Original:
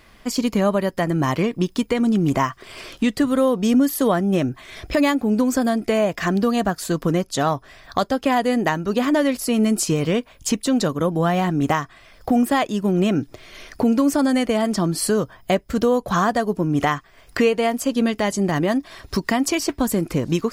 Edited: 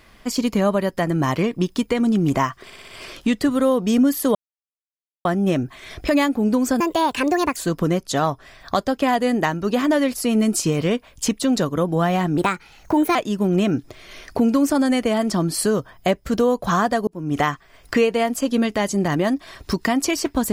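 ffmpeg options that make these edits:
-filter_complex "[0:a]asplit=11[s0][s1][s2][s3][s4][s5][s6][s7][s8][s9][s10];[s0]atrim=end=2.702[s11];[s1]atrim=start=2.638:end=2.702[s12];[s2]atrim=start=2.638:end=2.702[s13];[s3]atrim=start=2.638:end=2.702[s14];[s4]atrim=start=2.638:end=4.11,asetpts=PTS-STARTPTS,afade=t=out:st=1.468:d=0.004:c=hsin,apad=pad_dur=0.9[s15];[s5]atrim=start=4.11:end=5.664,asetpts=PTS-STARTPTS,afade=t=in:d=0.004:c=hsin[s16];[s6]atrim=start=5.66:end=6.8,asetpts=PTS-STARTPTS,asetrate=65709,aresample=44100[s17];[s7]atrim=start=6.796:end=11.614[s18];[s8]atrim=start=11.61:end=12.59,asetpts=PTS-STARTPTS,asetrate=55566,aresample=44100[s19];[s9]atrim=start=12.586:end=16.51,asetpts=PTS-STARTPTS,afade=t=out:st=3.92:d=0.004:c=hsin[s20];[s10]atrim=start=16.51,asetpts=PTS-STARTPTS,afade=t=in:d=0.34[s21];[s11][s12]acrossfade=d=0.004:c1=hsin:c2=hsin[s22];[s22][s13]acrossfade=d=0.004:c1=hsin:c2=hsin[s23];[s23][s14]acrossfade=d=0.004:c1=hsin:c2=hsin[s24];[s15][s16]concat=n=2:v=0:a=1[s25];[s24][s25]acrossfade=d=0.004:c1=hsin:c2=hsin[s26];[s26][s17]acrossfade=d=0.004:c1=hsin:c2=hsin[s27];[s27][s18]acrossfade=d=0.004:c1=hsin:c2=hsin[s28];[s28][s19]acrossfade=d=0.004:c1=hsin:c2=hsin[s29];[s20][s21]concat=n=2:v=0:a=1[s30];[s29][s30]acrossfade=d=0.004:c1=hsin:c2=hsin"

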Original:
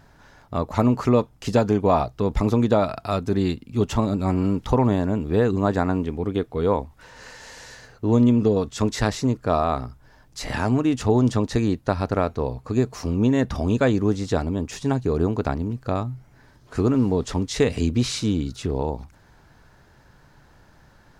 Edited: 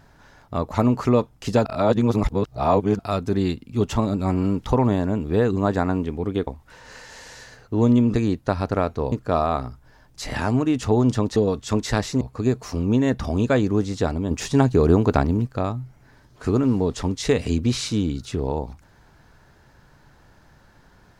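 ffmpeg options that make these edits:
-filter_complex "[0:a]asplit=10[s0][s1][s2][s3][s4][s5][s6][s7][s8][s9];[s0]atrim=end=1.652[s10];[s1]atrim=start=1.648:end=2.992,asetpts=PTS-STARTPTS,areverse[s11];[s2]atrim=start=2.988:end=6.472[s12];[s3]atrim=start=6.778:end=8.452[s13];[s4]atrim=start=11.538:end=12.522[s14];[s5]atrim=start=9.298:end=11.542[s15];[s6]atrim=start=8.448:end=9.302[s16];[s7]atrim=start=12.518:end=14.622[s17];[s8]atrim=start=14.618:end=15.782,asetpts=PTS-STARTPTS,volume=1.88[s18];[s9]atrim=start=15.778[s19];[s10][s11]acrossfade=d=0.004:c1=hsin:c2=hsin[s20];[s20][s12]acrossfade=d=0.004:c1=hsin:c2=hsin[s21];[s21][s13]acrossfade=d=0.004:c1=hsin:c2=hsin[s22];[s22][s14]acrossfade=d=0.004:c1=hsin:c2=hsin[s23];[s23][s15]acrossfade=d=0.004:c1=hsin:c2=hsin[s24];[s24][s16]acrossfade=d=0.004:c1=hsin:c2=hsin[s25];[s25][s17]acrossfade=d=0.004:c1=hsin:c2=hsin[s26];[s26][s18]acrossfade=d=0.004:c1=hsin:c2=hsin[s27];[s27][s19]acrossfade=d=0.004:c1=hsin:c2=hsin"

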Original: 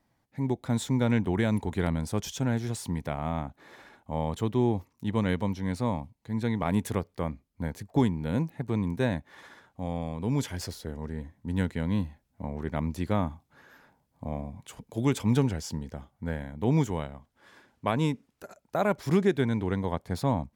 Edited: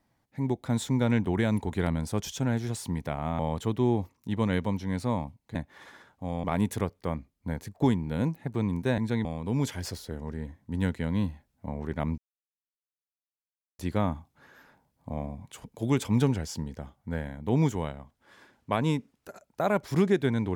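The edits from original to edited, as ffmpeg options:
-filter_complex "[0:a]asplit=7[s0][s1][s2][s3][s4][s5][s6];[s0]atrim=end=3.392[s7];[s1]atrim=start=4.148:end=6.312[s8];[s2]atrim=start=9.118:end=10.012[s9];[s3]atrim=start=6.578:end=9.122[s10];[s4]atrim=start=6.308:end=6.582[s11];[s5]atrim=start=10.008:end=12.94,asetpts=PTS-STARTPTS,afade=t=out:st=2.928:d=0.004:c=hsin,apad=pad_dur=1.61[s12];[s6]atrim=start=12.94,asetpts=PTS-STARTPTS,afade=t=in:d=0.004:c=hsin[s13];[s7][s8]acrossfade=d=0.004:c1=hsin:c2=hsin[s14];[s14][s9]acrossfade=d=0.004:c1=hsin:c2=hsin[s15];[s15][s10]acrossfade=d=0.004:c1=hsin:c2=hsin[s16];[s16][s11]acrossfade=d=0.004:c1=hsin:c2=hsin[s17];[s12][s13]concat=n=2:v=0:a=1[s18];[s17][s18]acrossfade=d=0.004:c1=hsin:c2=hsin"

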